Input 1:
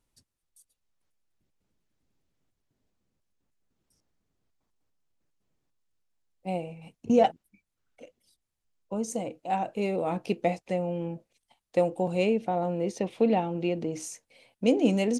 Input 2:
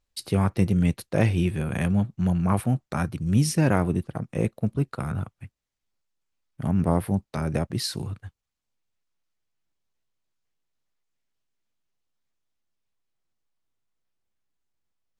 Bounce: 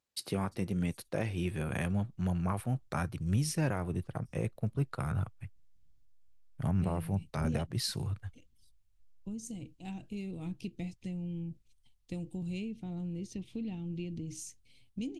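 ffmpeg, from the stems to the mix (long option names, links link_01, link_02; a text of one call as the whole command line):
ffmpeg -i stem1.wav -i stem2.wav -filter_complex "[0:a]firequalizer=gain_entry='entry(280,0);entry(550,-25);entry(3100,-5)':delay=0.05:min_phase=1,acompressor=threshold=-38dB:ratio=2,adelay=350,volume=0.5dB[link_01];[1:a]alimiter=limit=-15dB:level=0:latency=1:release=413,highpass=140,volume=-4dB[link_02];[link_01][link_02]amix=inputs=2:normalize=0,asubboost=boost=9:cutoff=77" out.wav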